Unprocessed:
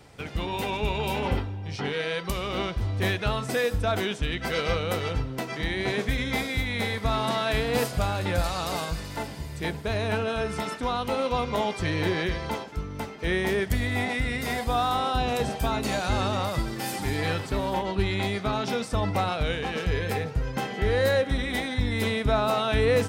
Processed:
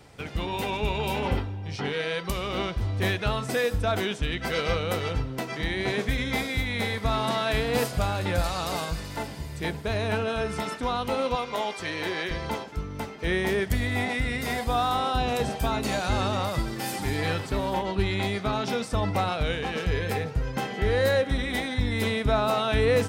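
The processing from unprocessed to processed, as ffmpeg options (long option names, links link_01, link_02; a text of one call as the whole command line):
ffmpeg -i in.wav -filter_complex "[0:a]asettb=1/sr,asplit=3[link_01][link_02][link_03];[link_01]atrim=end=11.354[link_04];[link_02]atrim=start=11.35:end=12.31,asetpts=PTS-STARTPTS,afade=type=in:duration=0.004:curve=qsin,afade=type=out:start_time=0.956:duration=0.004:curve=qsin,highpass=frequency=550:poles=1[link_05];[link_03]atrim=start=12.306[link_06];[link_04][link_05]acrossfade=duration=0.004:curve1=hsin:curve2=qsin[link_07];[link_07][link_06]acrossfade=duration=0.004:curve1=qsin:curve2=hsin" out.wav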